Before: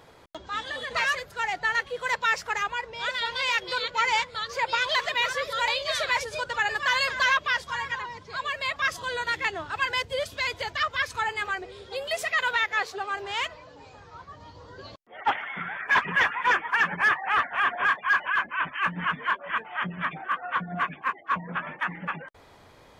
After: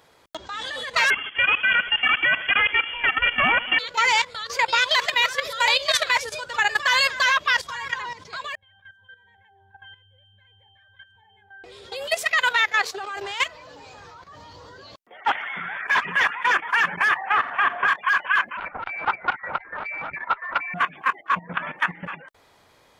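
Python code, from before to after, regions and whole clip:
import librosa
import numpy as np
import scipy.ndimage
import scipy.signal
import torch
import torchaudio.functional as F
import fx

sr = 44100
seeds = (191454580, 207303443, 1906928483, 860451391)

y = fx.chain(x, sr, fx.halfwave_hold(),
    fx.echo_feedback(ms=79, feedback_pct=50, wet_db=-15.5),
    fx.freq_invert(carrier_hz=3300), at=(1.1, 3.79))
y = fx.chain(y, sr, fx.fixed_phaser(hz=1300.0, stages=6),
    fx.octave_resonator(note='G', decay_s=0.57), at=(8.55, 11.64))
y = fx.chain(y, sr, fx.lowpass(hz=1500.0, slope=6),
    fx.room_flutter(wall_m=8.0, rt60_s=0.31),
    fx.band_squash(depth_pct=40), at=(17.16, 17.88))
y = fx.chain(y, sr, fx.freq_invert(carrier_hz=2500),
    fx.transformer_sat(knee_hz=900.0), at=(18.57, 20.74))
y = fx.tilt_eq(y, sr, slope=1.5)
y = fx.level_steps(y, sr, step_db=13)
y = F.gain(torch.from_numpy(y), 7.5).numpy()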